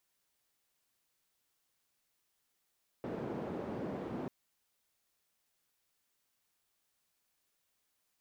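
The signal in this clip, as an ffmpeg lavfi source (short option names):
-f lavfi -i "anoisesrc=c=white:d=1.24:r=44100:seed=1,highpass=f=150,lowpass=f=410,volume=-16.5dB"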